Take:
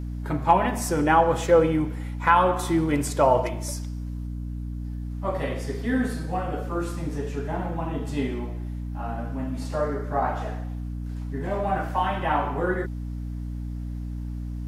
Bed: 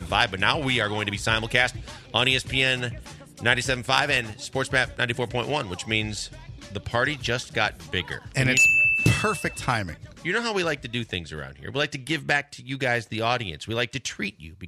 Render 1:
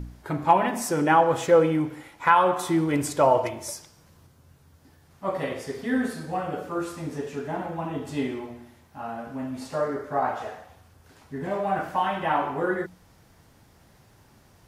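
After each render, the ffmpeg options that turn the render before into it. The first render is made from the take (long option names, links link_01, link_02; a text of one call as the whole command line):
ffmpeg -i in.wav -af "bandreject=frequency=60:width_type=h:width=4,bandreject=frequency=120:width_type=h:width=4,bandreject=frequency=180:width_type=h:width=4,bandreject=frequency=240:width_type=h:width=4,bandreject=frequency=300:width_type=h:width=4" out.wav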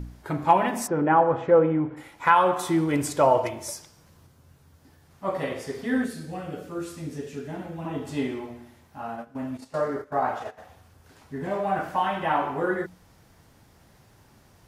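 ffmpeg -i in.wav -filter_complex "[0:a]asplit=3[link_01][link_02][link_03];[link_01]afade=type=out:start_time=0.86:duration=0.02[link_04];[link_02]lowpass=1500,afade=type=in:start_time=0.86:duration=0.02,afade=type=out:start_time=1.96:duration=0.02[link_05];[link_03]afade=type=in:start_time=1.96:duration=0.02[link_06];[link_04][link_05][link_06]amix=inputs=3:normalize=0,asettb=1/sr,asplit=3[link_07][link_08][link_09];[link_07]atrim=end=6.044[link_10];[link_08]atrim=start=6.04:end=7.85,asetpts=PTS-STARTPTS,afade=type=in:duration=0.004:curve=qsin,afade=type=out:start_time=1.806:duration=0.004:curve=qsin,equalizer=frequency=940:width=0.82:gain=-11[link_11];[link_09]atrim=start=7.846[link_12];[link_10][link_11]acrossfade=duration=0.004:curve1=hsin:curve2=qsin[link_13];[link_13][link_12]acrossfade=duration=0.004:curve1=qsin:curve2=hsin,asplit=3[link_14][link_15][link_16];[link_14]afade=type=out:start_time=9.06:duration=0.02[link_17];[link_15]agate=range=-14dB:threshold=-36dB:ratio=16:release=100:detection=peak,afade=type=in:start_time=9.06:duration=0.02,afade=type=out:start_time=10.57:duration=0.02[link_18];[link_16]afade=type=in:start_time=10.57:duration=0.02[link_19];[link_17][link_18][link_19]amix=inputs=3:normalize=0" out.wav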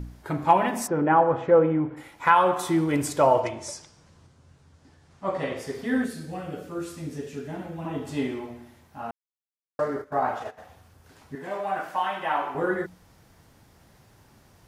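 ffmpeg -i in.wav -filter_complex "[0:a]asettb=1/sr,asplit=3[link_01][link_02][link_03];[link_01]atrim=end=3.414[link_04];[link_02]atrim=start=3.41:end=5.57,asetpts=PTS-STARTPTS,afade=type=in:duration=0.004:curve=qsin,afade=type=out:start_time=2.156:duration=0.004:curve=qsin,lowpass=frequency=8500:width=0.5412,lowpass=frequency=8500:width=1.3066[link_05];[link_03]atrim=start=5.566[link_06];[link_04][link_05]acrossfade=duration=0.004:curve1=hsin:curve2=qsin[link_07];[link_07][link_06]acrossfade=duration=0.004:curve1=qsin:curve2=hsin,asettb=1/sr,asplit=3[link_08][link_09][link_10];[link_08]atrim=end=11.354[link_11];[link_09]atrim=start=11.35:end=12.55,asetpts=PTS-STARTPTS,afade=type=in:duration=0.004:curve=qsin,afade=type=out:start_time=1.196:duration=0.004:curve=qsin,highpass=frequency=620:poles=1[link_12];[link_10]atrim=start=12.546[link_13];[link_11][link_12]acrossfade=duration=0.004:curve1=hsin:curve2=qsin[link_14];[link_14][link_13]acrossfade=duration=0.004:curve1=qsin:curve2=hsin,asplit=3[link_15][link_16][link_17];[link_15]atrim=end=9.11,asetpts=PTS-STARTPTS,afade=type=out:start_time=9.106:duration=0.004:curve=hsin[link_18];[link_16]atrim=start=9.11:end=9.79,asetpts=PTS-STARTPTS,volume=0[link_19];[link_17]atrim=start=9.79,asetpts=PTS-STARTPTS,afade=type=in:duration=0.004:curve=hsin[link_20];[link_18][link_19][link_20]concat=n=3:v=0:a=1" out.wav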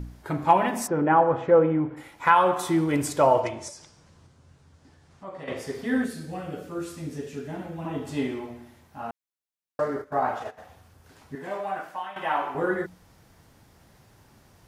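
ffmpeg -i in.wav -filter_complex "[0:a]asettb=1/sr,asplit=3[link_01][link_02][link_03];[link_01]atrim=end=3.684[link_04];[link_02]atrim=start=3.68:end=5.48,asetpts=PTS-STARTPTS,afade=type=in:duration=0.004:curve=qsin,afade=type=out:start_time=1.796:duration=0.004:curve=qsin,acompressor=threshold=-44dB:ratio=2:attack=3.2:release=140:knee=1:detection=peak[link_05];[link_03]atrim=start=5.476[link_06];[link_04][link_05]acrossfade=duration=0.004:curve1=hsin:curve2=qsin[link_07];[link_07][link_06]acrossfade=duration=0.004:curve1=qsin:curve2=hsin,asplit=2[link_08][link_09];[link_08]atrim=end=12.16,asetpts=PTS-STARTPTS,afade=type=out:start_time=11.5:duration=0.66:silence=0.251189[link_10];[link_09]atrim=start=12.16,asetpts=PTS-STARTPTS,afade=type=in:duration=0.004:curve=hsin:silence=0.251189[link_11];[link_10][link_11]concat=n=2:v=0:a=1" out.wav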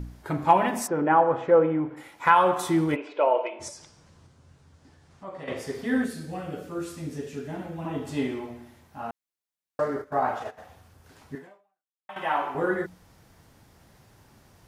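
ffmpeg -i in.wav -filter_complex "[0:a]asettb=1/sr,asplit=3[link_01][link_02][link_03];[link_01]atrim=end=0.794[link_04];[link_02]atrim=start=0.79:end=2.26,asetpts=PTS-STARTPTS,afade=type=in:duration=0.004:curve=qsin,afade=type=out:start_time=1.466:duration=0.004:curve=qsin,lowshelf=frequency=120:gain=-11.5[link_05];[link_03]atrim=start=2.256[link_06];[link_04][link_05]acrossfade=duration=0.004:curve1=hsin:curve2=qsin[link_07];[link_07][link_06]acrossfade=duration=0.004:curve1=qsin:curve2=hsin,asplit=3[link_08][link_09][link_10];[link_08]afade=type=out:start_time=2.94:duration=0.02[link_11];[link_09]highpass=frequency=390:width=0.5412,highpass=frequency=390:width=1.3066,equalizer=frequency=750:width_type=q:width=4:gain=-6,equalizer=frequency=1200:width_type=q:width=4:gain=-7,equalizer=frequency=1800:width_type=q:width=4:gain=-9,equalizer=frequency=2600:width_type=q:width=4:gain=6,lowpass=frequency=2900:width=0.5412,lowpass=frequency=2900:width=1.3066,afade=type=in:start_time=2.94:duration=0.02,afade=type=out:start_time=3.59:duration=0.02[link_12];[link_10]afade=type=in:start_time=3.59:duration=0.02[link_13];[link_11][link_12][link_13]amix=inputs=3:normalize=0,asplit=2[link_14][link_15];[link_14]atrim=end=12.09,asetpts=PTS-STARTPTS,afade=type=out:start_time=11.37:duration=0.72:curve=exp[link_16];[link_15]atrim=start=12.09,asetpts=PTS-STARTPTS,afade=type=in:duration=0.004:curve=hsin[link_17];[link_16][link_17]concat=n=2:v=0:a=1" out.wav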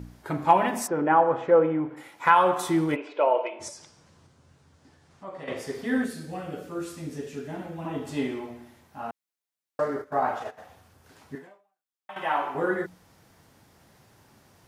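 ffmpeg -i in.wav -af "highpass=frequency=120:poles=1" out.wav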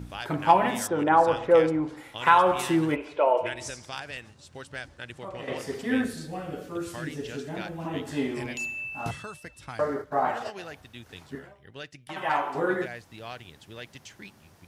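ffmpeg -i in.wav -i bed.wav -filter_complex "[1:a]volume=-16dB[link_01];[0:a][link_01]amix=inputs=2:normalize=0" out.wav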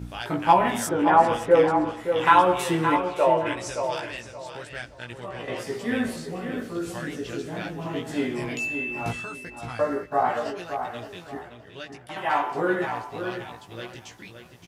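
ffmpeg -i in.wav -filter_complex "[0:a]asplit=2[link_01][link_02];[link_02]adelay=17,volume=-3dB[link_03];[link_01][link_03]amix=inputs=2:normalize=0,asplit=2[link_04][link_05];[link_05]adelay=570,lowpass=frequency=3700:poles=1,volume=-7.5dB,asplit=2[link_06][link_07];[link_07]adelay=570,lowpass=frequency=3700:poles=1,volume=0.27,asplit=2[link_08][link_09];[link_09]adelay=570,lowpass=frequency=3700:poles=1,volume=0.27[link_10];[link_04][link_06][link_08][link_10]amix=inputs=4:normalize=0" out.wav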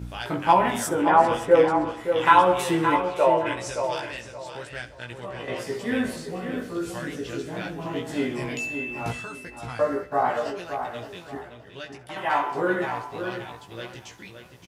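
ffmpeg -i in.wav -filter_complex "[0:a]asplit=2[link_01][link_02];[link_02]adelay=15,volume=-12dB[link_03];[link_01][link_03]amix=inputs=2:normalize=0,aecho=1:1:66|132|198:0.126|0.0428|0.0146" out.wav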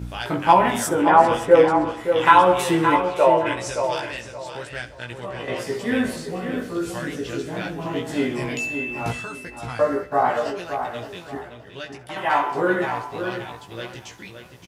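ffmpeg -i in.wav -af "volume=3.5dB,alimiter=limit=-1dB:level=0:latency=1" out.wav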